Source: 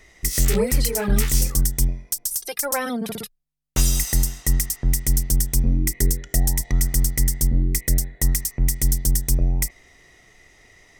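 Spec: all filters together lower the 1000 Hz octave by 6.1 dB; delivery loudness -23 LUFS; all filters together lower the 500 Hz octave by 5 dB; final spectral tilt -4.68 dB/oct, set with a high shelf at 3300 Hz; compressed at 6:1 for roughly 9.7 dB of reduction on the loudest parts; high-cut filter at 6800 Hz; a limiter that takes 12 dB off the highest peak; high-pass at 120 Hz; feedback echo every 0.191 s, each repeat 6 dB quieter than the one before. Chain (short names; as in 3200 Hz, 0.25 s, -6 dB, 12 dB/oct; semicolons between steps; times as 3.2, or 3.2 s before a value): HPF 120 Hz; LPF 6800 Hz; bell 500 Hz -4.5 dB; bell 1000 Hz -6 dB; high shelf 3300 Hz -7 dB; compressor 6:1, threshold -32 dBFS; limiter -30.5 dBFS; feedback echo 0.191 s, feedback 50%, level -6 dB; gain +15.5 dB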